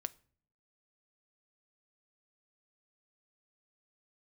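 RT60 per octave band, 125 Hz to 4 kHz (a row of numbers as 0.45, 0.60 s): 0.85, 0.80, 0.55, 0.45, 0.40, 0.35 s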